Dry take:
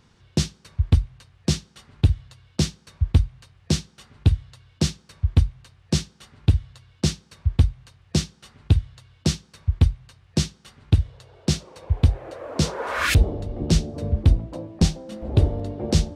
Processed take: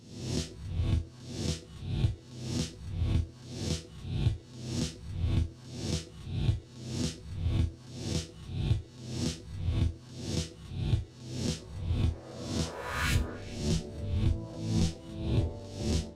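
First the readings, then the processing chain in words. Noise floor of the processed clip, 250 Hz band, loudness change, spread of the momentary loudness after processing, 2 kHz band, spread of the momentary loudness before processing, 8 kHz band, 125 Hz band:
−51 dBFS, −8.0 dB, −10.0 dB, 7 LU, −9.0 dB, 8 LU, −8.5 dB, −9.5 dB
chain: peak hold with a rise ahead of every peak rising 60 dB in 0.82 s
resonators tuned to a chord E2 sus4, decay 0.25 s
echo through a band-pass that steps 140 ms, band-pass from 420 Hz, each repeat 1.4 octaves, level −11 dB
level −2 dB

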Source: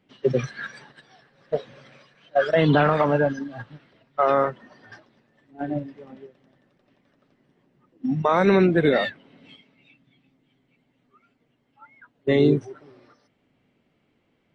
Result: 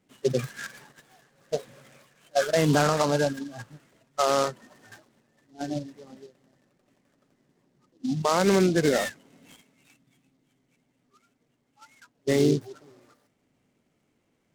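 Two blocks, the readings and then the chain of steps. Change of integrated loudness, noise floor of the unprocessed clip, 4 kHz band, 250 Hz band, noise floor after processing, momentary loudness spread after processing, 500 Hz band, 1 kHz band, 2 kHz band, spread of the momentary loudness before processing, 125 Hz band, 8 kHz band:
−3.5 dB, −69 dBFS, +2.5 dB, −3.5 dB, −72 dBFS, 16 LU, −3.5 dB, −4.0 dB, −4.5 dB, 16 LU, −3.5 dB, can't be measured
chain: short delay modulated by noise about 4,400 Hz, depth 0.047 ms
level −3.5 dB

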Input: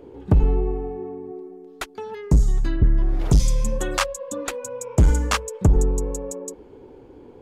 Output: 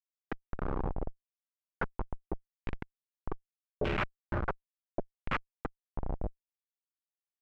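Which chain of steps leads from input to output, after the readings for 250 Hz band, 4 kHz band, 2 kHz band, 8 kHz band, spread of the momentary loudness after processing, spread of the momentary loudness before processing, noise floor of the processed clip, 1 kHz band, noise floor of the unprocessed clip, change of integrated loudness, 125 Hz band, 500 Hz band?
−15.0 dB, −17.0 dB, −7.5 dB, below −40 dB, 11 LU, 16 LU, below −85 dBFS, −8.5 dB, −46 dBFS, −17.0 dB, −20.0 dB, −13.0 dB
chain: dynamic equaliser 500 Hz, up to −7 dB, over −43 dBFS, Q 2.3
downward compressor 16 to 1, threshold −21 dBFS, peak gain reduction 10.5 dB
single-sideband voice off tune +51 Hz 240–3,600 Hz
comparator with hysteresis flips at −28.5 dBFS
auto-filter low-pass saw down 0.78 Hz 530–2,800 Hz
level +5 dB

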